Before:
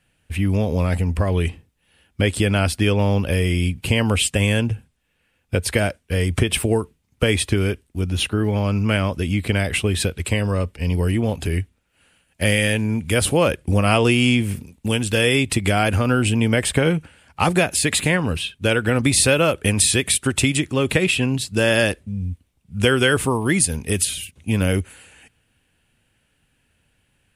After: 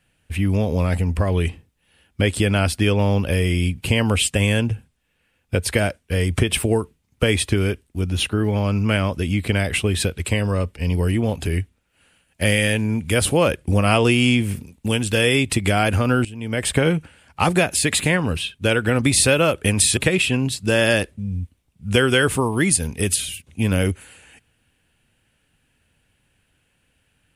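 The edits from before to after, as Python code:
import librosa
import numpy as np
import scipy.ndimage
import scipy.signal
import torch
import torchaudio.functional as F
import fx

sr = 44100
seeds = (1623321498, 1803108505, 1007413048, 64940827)

y = fx.edit(x, sr, fx.fade_in_from(start_s=16.25, length_s=0.43, curve='qua', floor_db=-18.0),
    fx.cut(start_s=19.97, length_s=0.89), tone=tone)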